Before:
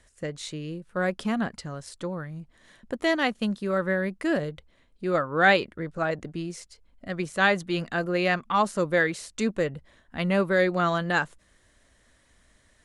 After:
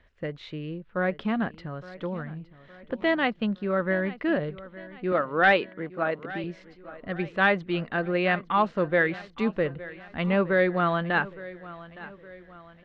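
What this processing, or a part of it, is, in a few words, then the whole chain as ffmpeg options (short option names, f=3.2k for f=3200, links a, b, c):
synthesiser wavefolder: -filter_complex "[0:a]asettb=1/sr,asplit=3[a][b][c];[a]atrim=end=5.124[d];[b]atrim=start=5.12:end=6.44,asetpts=PTS-STARTPTS,afade=t=in:d=0.004:c=qsin,afade=t=out:st=1.316:d=0.004:c=qsin,highpass=200[e];[c]atrim=start=6.436[f];[d][e]acrossfade=d=0.004:c1=hsin:c2=qsin[g];[g][f]acrossfade=d=0.004:c1=qsin:c2=hsin,aeval=exprs='0.316*(abs(mod(val(0)/0.316+3,4)-2)-1)':c=same,lowpass=f=3.3k:w=0.5412,lowpass=f=3.3k:w=1.3066,aecho=1:1:864|1728|2592|3456:0.133|0.0627|0.0295|0.0138"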